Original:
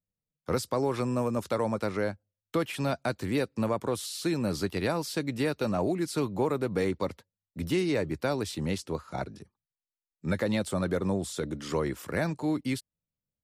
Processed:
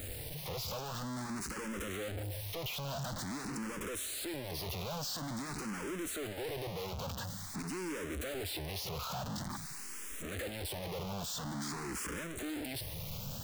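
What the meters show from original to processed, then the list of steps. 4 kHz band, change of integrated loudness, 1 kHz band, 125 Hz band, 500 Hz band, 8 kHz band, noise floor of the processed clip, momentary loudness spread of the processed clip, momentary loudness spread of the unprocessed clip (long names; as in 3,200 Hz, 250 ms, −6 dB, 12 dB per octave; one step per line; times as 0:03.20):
−1.0 dB, −9.0 dB, −7.5 dB, −8.0 dB, −12.5 dB, +0.5 dB, −44 dBFS, 3 LU, 6 LU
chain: sign of each sample alone
frequency shifter mixed with the dry sound +0.48 Hz
level −6 dB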